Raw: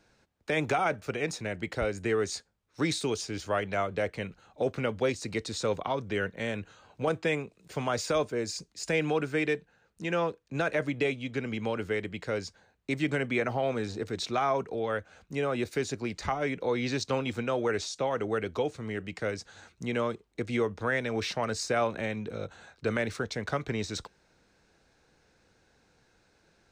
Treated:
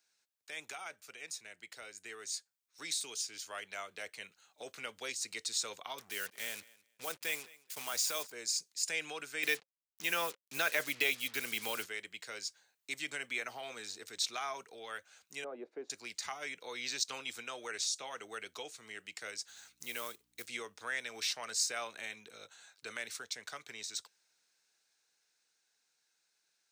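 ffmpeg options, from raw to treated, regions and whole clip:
-filter_complex "[0:a]asettb=1/sr,asplit=3[a][b][c];[a]atrim=end=5.984[d];[b]atrim=start=5.98:end=8.32,asetpts=PTS-STARTPTS,afade=t=in:d=0.004:c=qsin,afade=t=out:st=2.336:d=0.004:c=qsin,acrusher=bits=6:mix=0:aa=0.5,aecho=1:1:213|426:0.0794|0.0135,atrim=end_sample=103194[e];[c]atrim=start=8.316[f];[d][e]acrossfade=d=0.004:c1=hsin:c2=qsin[g];[g][f]acrossfade=d=0.004:c1=qsin:c2=hsin,asettb=1/sr,asplit=3[h][i][j];[h]atrim=end=9.434[k];[i]atrim=start=9.43:end=11.86,asetpts=PTS-STARTPTS,afade=t=in:d=0.004:c=qsin,afade=t=out:st=2.426:d=0.004:c=qsin,lowpass=f=6.2k:w=0.5412,lowpass=f=6.2k:w=1.3066,acontrast=80,acrusher=bits=6:mix=0:aa=0.5[l];[j]atrim=start=11.856[m];[k][l]acrossfade=d=0.004:c1=hsin:c2=qsin[n];[n][m]acrossfade=d=0.004:c1=qsin:c2=hsin,asettb=1/sr,asplit=3[o][p][q];[o]atrim=end=15.444[r];[p]atrim=start=15.44:end=15.9,asetpts=PTS-STARTPTS,afade=t=in:d=0.004:c=qsin,afade=t=out:st=0.456:d=0.004:c=qsin,asuperpass=centerf=420:order=4:qfactor=0.86,acontrast=53[s];[q]atrim=start=15.896[t];[r][s]acrossfade=d=0.004:c1=hsin:c2=qsin[u];[u][t]acrossfade=d=0.004:c1=qsin:c2=hsin,asettb=1/sr,asplit=3[v][w][x];[v]atrim=end=19.484[y];[w]atrim=start=19.48:end=20.48,asetpts=PTS-STARTPTS,afade=t=in:d=0.004:c=qsin,afade=t=out:st=0.996:d=0.004:c=qsin,acrusher=bits=6:mode=log:mix=0:aa=0.000001,aeval=exprs='val(0)+0.00251*(sin(2*PI*60*n/s)+sin(2*PI*2*60*n/s)/2+sin(2*PI*3*60*n/s)/3+sin(2*PI*4*60*n/s)/4+sin(2*PI*5*60*n/s)/5)':c=same[z];[x]atrim=start=20.476[aa];[y][z]acrossfade=d=0.004:c1=hsin:c2=qsin[ab];[ab][aa]acrossfade=d=0.004:c1=qsin:c2=hsin,aderivative,bandreject=f=540:w=18,dynaudnorm=f=220:g=31:m=7.5dB,volume=-2dB"

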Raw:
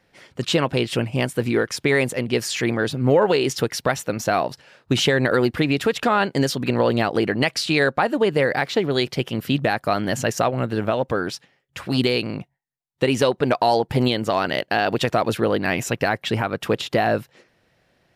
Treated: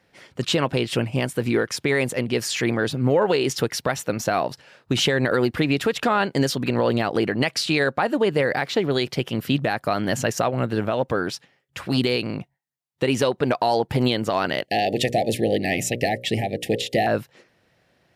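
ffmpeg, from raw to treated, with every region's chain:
-filter_complex "[0:a]asettb=1/sr,asplit=3[a][b][c];[a]atrim=end=14.654[d];[b]atrim=start=14.65:end=17.07,asetpts=PTS-STARTPTS,afade=t=in:d=0.004:c=qsin,afade=t=out:st=2.416:d=0.004:c=qsin,asuperstop=centerf=1200:order=20:qfactor=1.3,equalizer=f=9k:t=o:w=0.94:g=5,bandreject=f=60:t=h:w=6,bandreject=f=120:t=h:w=6,bandreject=f=180:t=h:w=6,bandreject=f=240:t=h:w=6,bandreject=f=300:t=h:w=6,bandreject=f=360:t=h:w=6,bandreject=f=420:t=h:w=6,bandreject=f=480:t=h:w=6,bandreject=f=540:t=h:w=6,bandreject=f=600:t=h:w=6[e];[c]atrim=start=17.066[f];[d][e]acrossfade=d=0.004:c1=hsin:c2=qsin[g];[g][f]acrossfade=d=0.004:c1=qsin:c2=hsin,highpass=51,alimiter=limit=-10dB:level=0:latency=1:release=90"

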